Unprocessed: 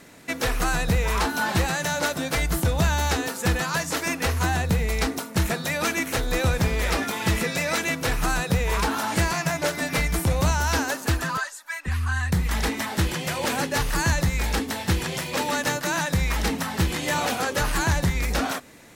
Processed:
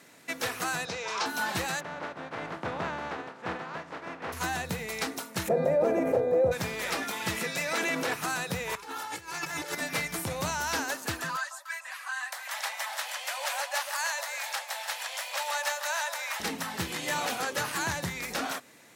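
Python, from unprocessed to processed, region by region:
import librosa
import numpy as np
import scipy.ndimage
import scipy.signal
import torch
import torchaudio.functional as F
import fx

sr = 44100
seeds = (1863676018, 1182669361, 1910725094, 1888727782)

y = fx.chain(x, sr, fx.cheby1_lowpass(hz=5800.0, order=3),
    fx.bass_treble(bass_db=-12, treble_db=5),
    fx.notch(hz=1900.0, q=11.0), at=(0.85, 1.26))
y = fx.spec_flatten(y, sr, power=0.44, at=(1.79, 4.32), fade=0.02)
y = fx.lowpass(y, sr, hz=1300.0, slope=12, at=(1.79, 4.32), fade=0.02)
y = fx.curve_eq(y, sr, hz=(320.0, 530.0, 1200.0, 3400.0), db=(0, 13, -14, -27), at=(5.47, 6.51), fade=0.02)
y = fx.dmg_buzz(y, sr, base_hz=400.0, harmonics=6, level_db=-49.0, tilt_db=-3, odd_only=False, at=(5.47, 6.51), fade=0.02)
y = fx.env_flatten(y, sr, amount_pct=70, at=(5.47, 6.51), fade=0.02)
y = fx.chain(y, sr, fx.highpass(hz=290.0, slope=12),
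    fx.tilt_eq(slope=-2.0),
    fx.env_flatten(amount_pct=100), at=(7.73, 8.14))
y = fx.chain(y, sr, fx.comb(ms=2.3, depth=0.71),
    fx.over_compress(threshold_db=-32.0, ratio=-1.0), at=(8.75, 9.75))
y = fx.chain(y, sr, fx.steep_highpass(hz=550.0, slope=96),
    fx.echo_alternate(ms=146, hz=1100.0, feedback_pct=52, wet_db=-6), at=(11.36, 16.4))
y = scipy.signal.sosfilt(scipy.signal.butter(4, 99.0, 'highpass', fs=sr, output='sos'), y)
y = fx.low_shelf(y, sr, hz=400.0, db=-7.5)
y = y * librosa.db_to_amplitude(-4.5)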